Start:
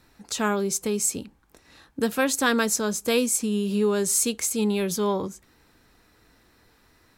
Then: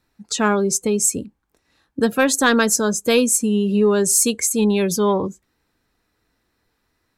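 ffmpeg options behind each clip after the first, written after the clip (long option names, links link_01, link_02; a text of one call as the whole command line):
ffmpeg -i in.wav -af "afftdn=noise_reduction=17:noise_floor=-37,acontrast=76" out.wav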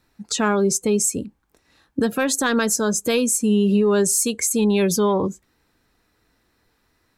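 ffmpeg -i in.wav -af "alimiter=limit=-15dB:level=0:latency=1:release=248,volume=4dB" out.wav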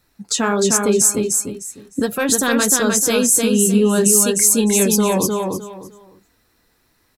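ffmpeg -i in.wav -af "crystalizer=i=1:c=0,flanger=delay=1.5:depth=7.1:regen=-50:speed=1.4:shape=sinusoidal,aecho=1:1:305|610|915:0.668|0.16|0.0385,volume=5dB" out.wav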